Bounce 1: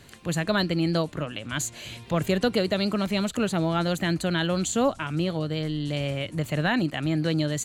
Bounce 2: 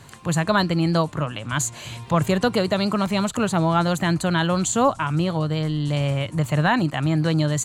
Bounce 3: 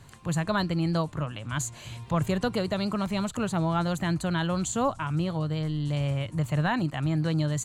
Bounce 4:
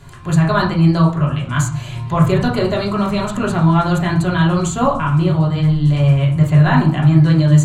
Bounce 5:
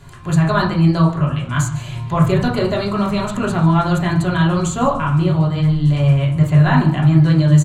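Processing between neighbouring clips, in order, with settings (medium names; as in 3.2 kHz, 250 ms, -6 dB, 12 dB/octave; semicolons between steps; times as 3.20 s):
graphic EQ 125/1000/8000 Hz +9/+11/+6 dB
bass shelf 93 Hz +11 dB; trim -8 dB
reverberation RT60 0.50 s, pre-delay 3 ms, DRR -3.5 dB; trim +5.5 dB
delay 148 ms -18.5 dB; trim -1 dB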